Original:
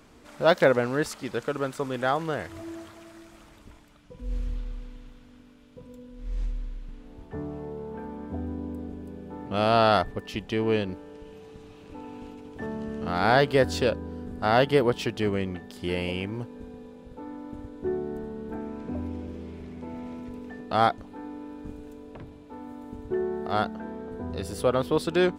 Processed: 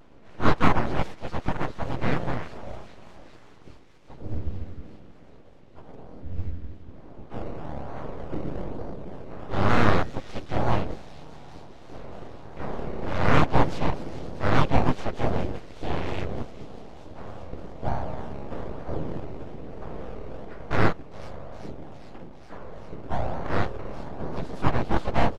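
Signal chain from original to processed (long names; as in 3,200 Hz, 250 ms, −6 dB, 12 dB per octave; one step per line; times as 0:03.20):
pitch-shifted copies added −5 semitones −7 dB, −3 semitones −5 dB, +5 semitones −6 dB
full-wave rectification
in parallel at −4 dB: sample-and-hold swept by an LFO 17×, swing 100% 1.1 Hz
on the sum: head-to-tape spacing loss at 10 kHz 22 dB
on a send: delay with a high-pass on its return 405 ms, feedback 76%, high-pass 4,800 Hz, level −9.5 dB
on the sum: pitch modulation by a square or saw wave square 3.3 Hz, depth 100 cents
level −1 dB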